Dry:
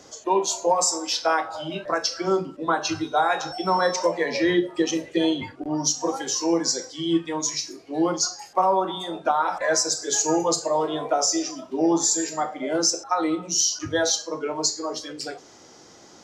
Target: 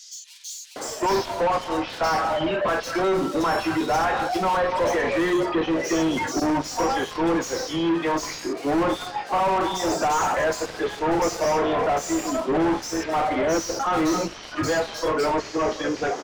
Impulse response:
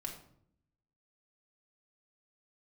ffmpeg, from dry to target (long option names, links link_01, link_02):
-filter_complex "[0:a]asplit=2[link_01][link_02];[link_02]highpass=frequency=720:poles=1,volume=36dB,asoftclip=type=tanh:threshold=-8.5dB[link_03];[link_01][link_03]amix=inputs=2:normalize=0,lowpass=frequency=1300:poles=1,volume=-6dB,acrossover=split=3800[link_04][link_05];[link_04]adelay=760[link_06];[link_06][link_05]amix=inputs=2:normalize=0,volume=-5.5dB"